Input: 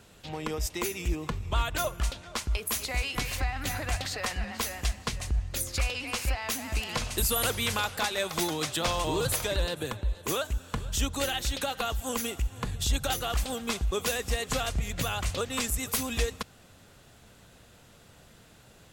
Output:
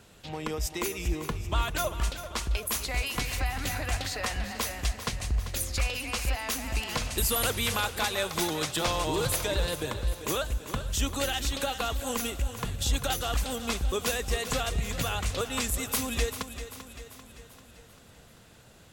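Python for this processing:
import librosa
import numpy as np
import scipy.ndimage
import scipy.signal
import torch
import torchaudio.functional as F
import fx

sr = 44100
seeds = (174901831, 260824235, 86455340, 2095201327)

y = fx.echo_feedback(x, sr, ms=392, feedback_pct=54, wet_db=-11.5)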